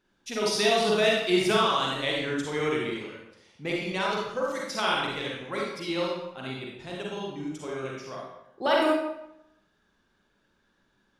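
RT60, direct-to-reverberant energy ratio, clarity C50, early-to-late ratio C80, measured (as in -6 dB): 0.85 s, -3.5 dB, -0.5 dB, 3.0 dB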